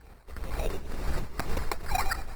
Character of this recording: tremolo triangle 2.1 Hz, depth 80%; phasing stages 8, 2.8 Hz, lowest notch 180–2500 Hz; aliases and images of a low sample rate 3.2 kHz, jitter 0%; Opus

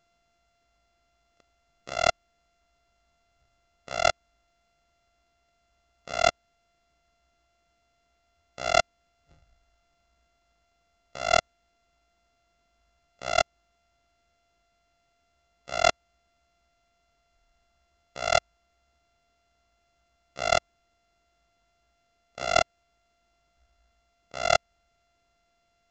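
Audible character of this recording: a buzz of ramps at a fixed pitch in blocks of 64 samples; µ-law

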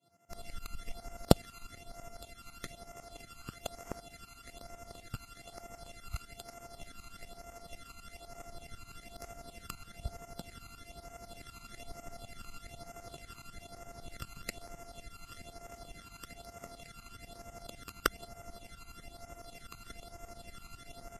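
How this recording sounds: a buzz of ramps at a fixed pitch in blocks of 64 samples; tremolo saw up 12 Hz, depth 95%; phasing stages 12, 1.1 Hz, lowest notch 570–4000 Hz; Vorbis

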